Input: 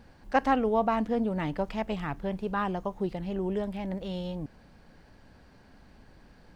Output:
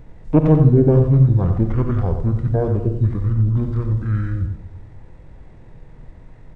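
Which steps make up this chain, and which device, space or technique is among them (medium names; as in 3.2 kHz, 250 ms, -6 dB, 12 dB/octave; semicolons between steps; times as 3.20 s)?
monster voice (pitch shift -9.5 st; formant shift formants -5 st; bass shelf 200 Hz +7.5 dB; delay 90 ms -8 dB; reverberation RT60 0.95 s, pre-delay 33 ms, DRR 8.5 dB); trim +8 dB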